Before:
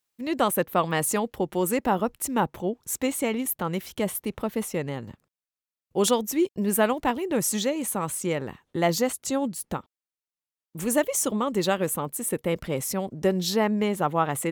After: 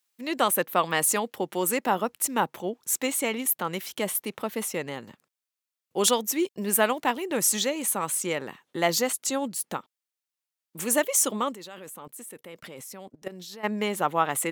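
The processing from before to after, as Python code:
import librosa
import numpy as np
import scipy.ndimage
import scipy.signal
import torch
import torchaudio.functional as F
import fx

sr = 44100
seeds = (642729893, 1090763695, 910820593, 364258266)

y = scipy.signal.sosfilt(scipy.signal.butter(2, 180.0, 'highpass', fs=sr, output='sos'), x)
y = fx.tilt_shelf(y, sr, db=-4.0, hz=860.0)
y = fx.level_steps(y, sr, step_db=21, at=(11.52, 13.63), fade=0.02)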